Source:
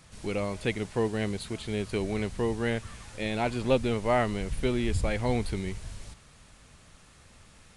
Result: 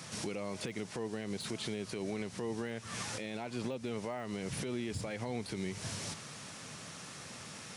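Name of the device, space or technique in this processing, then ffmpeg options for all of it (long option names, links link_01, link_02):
broadcast voice chain: -af "highpass=frequency=120:width=0.5412,highpass=frequency=120:width=1.3066,deesser=0.95,acompressor=threshold=-37dB:ratio=5,equalizer=frequency=5600:width_type=o:width=0.41:gain=5.5,alimiter=level_in=13dB:limit=-24dB:level=0:latency=1:release=213,volume=-13dB,volume=9dB"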